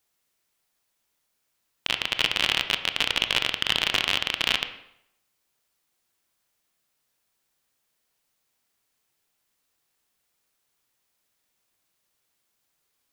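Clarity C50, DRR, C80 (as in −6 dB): 10.5 dB, 8.0 dB, 12.5 dB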